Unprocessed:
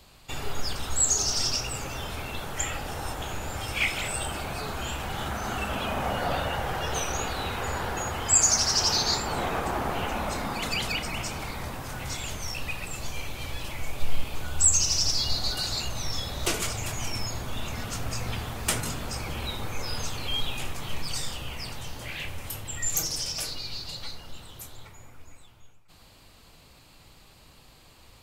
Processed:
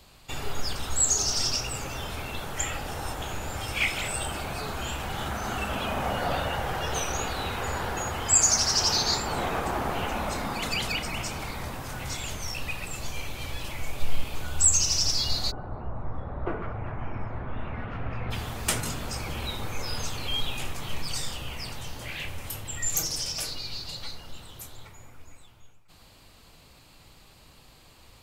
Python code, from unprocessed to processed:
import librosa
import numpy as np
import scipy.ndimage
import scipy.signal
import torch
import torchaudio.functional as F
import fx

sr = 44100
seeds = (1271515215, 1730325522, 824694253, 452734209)

y = fx.lowpass(x, sr, hz=fx.line((15.5, 1100.0), (18.3, 2500.0)), slope=24, at=(15.5, 18.3), fade=0.02)